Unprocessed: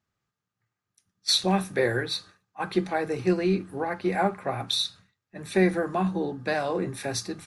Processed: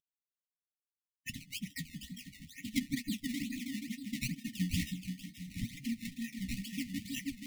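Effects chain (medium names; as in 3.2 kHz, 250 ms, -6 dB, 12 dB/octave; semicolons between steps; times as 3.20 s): random holes in the spectrogram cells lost 80%; gate -58 dBFS, range -47 dB; peaking EQ 130 Hz +10 dB 0.89 oct; delay with an opening low-pass 160 ms, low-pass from 200 Hz, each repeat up 1 oct, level 0 dB; formant-preserving pitch shift +7.5 st; treble shelf 7.5 kHz +11.5 dB; decimation with a swept rate 19×, swing 100% 2.2 Hz; flange 0.69 Hz, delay 6.6 ms, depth 10 ms, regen +41%; brick-wall FIR band-stop 290–1800 Hz; trim +1 dB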